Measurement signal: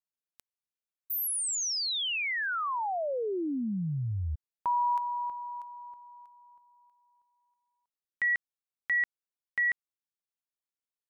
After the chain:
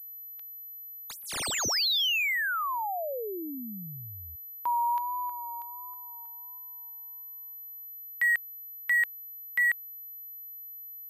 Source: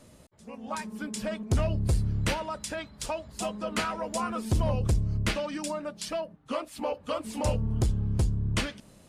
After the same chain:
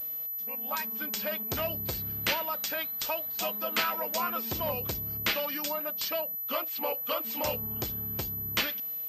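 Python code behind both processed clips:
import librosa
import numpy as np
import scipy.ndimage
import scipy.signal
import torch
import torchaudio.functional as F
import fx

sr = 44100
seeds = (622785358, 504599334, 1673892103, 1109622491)

y = fx.highpass(x, sr, hz=520.0, slope=6)
y = fx.high_shelf(y, sr, hz=2500.0, db=9.0)
y = fx.vibrato(y, sr, rate_hz=1.4, depth_cents=39.0)
y = fx.pwm(y, sr, carrier_hz=12000.0)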